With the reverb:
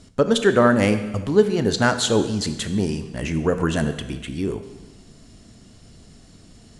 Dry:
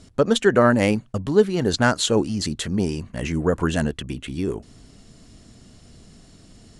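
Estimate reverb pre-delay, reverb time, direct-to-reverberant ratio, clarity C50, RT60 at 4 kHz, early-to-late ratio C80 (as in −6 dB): 8 ms, 1.3 s, 9.0 dB, 10.5 dB, 1.2 s, 12.0 dB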